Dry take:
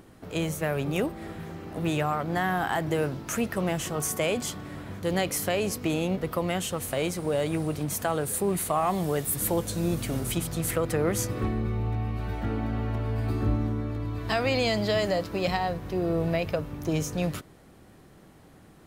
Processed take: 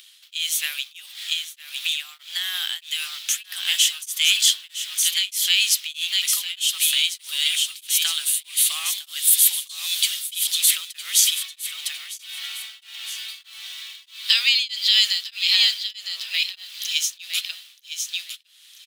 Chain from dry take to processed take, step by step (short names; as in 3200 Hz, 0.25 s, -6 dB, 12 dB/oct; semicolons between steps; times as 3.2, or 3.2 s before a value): in parallel at -11 dB: bit-crush 7-bit; on the sum: ladder high-pass 3000 Hz, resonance 60%; 0.86–2.54 compressor 6:1, threshold -45 dBFS, peak gain reduction 8.5 dB; 15.91–16.34 air absorption 480 m; on a send: feedback echo 0.958 s, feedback 19%, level -6.5 dB; on the sum: maximiser +25.5 dB; beating tremolo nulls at 1.6 Hz; gain -2 dB